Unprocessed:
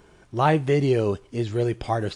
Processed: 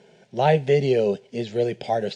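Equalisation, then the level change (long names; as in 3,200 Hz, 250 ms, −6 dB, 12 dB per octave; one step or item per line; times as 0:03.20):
band-pass filter 180–8,000 Hz
high-frequency loss of the air 65 metres
phaser with its sweep stopped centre 310 Hz, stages 6
+5.5 dB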